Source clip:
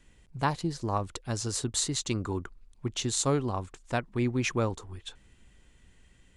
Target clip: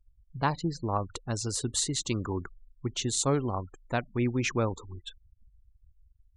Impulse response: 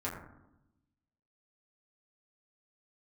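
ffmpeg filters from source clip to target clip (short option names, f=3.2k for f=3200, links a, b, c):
-filter_complex "[0:a]asplit=2[a][b];[1:a]atrim=start_sample=2205,asetrate=83790,aresample=44100[c];[b][c]afir=irnorm=-1:irlink=0,volume=-25dB[d];[a][d]amix=inputs=2:normalize=0,afftfilt=real='re*gte(hypot(re,im),0.00794)':imag='im*gte(hypot(re,im),0.00794)':win_size=1024:overlap=0.75"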